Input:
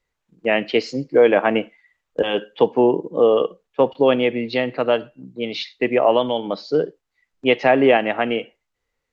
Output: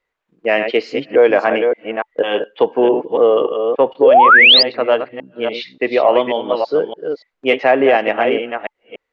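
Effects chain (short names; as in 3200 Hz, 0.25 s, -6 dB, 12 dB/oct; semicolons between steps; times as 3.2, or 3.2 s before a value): reverse delay 0.289 s, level -6 dB; tone controls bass -13 dB, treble -13 dB; notch 870 Hz, Q 23; in parallel at -12 dB: soft clip -10.5 dBFS, distortion -16 dB; on the sum: painted sound rise, 4.02–4.63, 390–5100 Hz -7 dBFS; maximiser +3.5 dB; gain -1 dB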